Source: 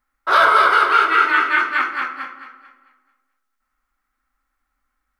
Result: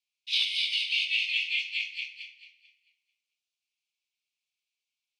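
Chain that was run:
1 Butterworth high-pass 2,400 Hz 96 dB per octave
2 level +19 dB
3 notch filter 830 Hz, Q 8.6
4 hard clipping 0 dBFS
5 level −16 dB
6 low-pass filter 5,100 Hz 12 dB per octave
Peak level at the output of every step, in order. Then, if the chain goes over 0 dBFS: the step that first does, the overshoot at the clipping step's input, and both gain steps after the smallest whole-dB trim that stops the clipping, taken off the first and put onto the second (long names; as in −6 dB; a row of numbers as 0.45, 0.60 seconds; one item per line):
−15.5, +3.5, +3.5, 0.0, −16.0, −15.5 dBFS
step 2, 3.5 dB
step 2 +15 dB, step 5 −12 dB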